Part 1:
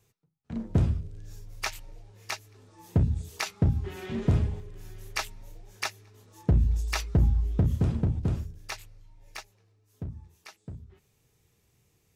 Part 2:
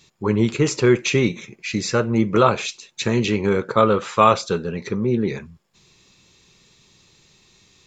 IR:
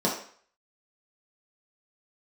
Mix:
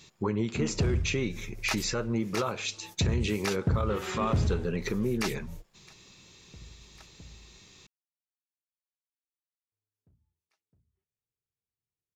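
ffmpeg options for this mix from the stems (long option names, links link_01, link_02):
-filter_complex "[0:a]adelay=50,volume=1.5dB,asplit=3[link_01][link_02][link_03];[link_01]atrim=end=7.58,asetpts=PTS-STARTPTS,afade=type=out:start_time=7.576:duration=0.004:curve=hsin[link_04];[link_02]atrim=start=7.58:end=9.72,asetpts=PTS-STARTPTS,volume=0[link_05];[link_03]atrim=start=9.72,asetpts=PTS-STARTPTS,afade=type=in:duration=0.004:curve=hsin[link_06];[link_04][link_05][link_06]concat=n=3:v=0:a=1[link_07];[1:a]acompressor=threshold=-27dB:ratio=5,volume=0.5dB,asplit=2[link_08][link_09];[link_09]apad=whole_len=542680[link_10];[link_07][link_10]sidechaingate=range=-32dB:threshold=-50dB:ratio=16:detection=peak[link_11];[link_11][link_08]amix=inputs=2:normalize=0,alimiter=limit=-19dB:level=0:latency=1:release=22"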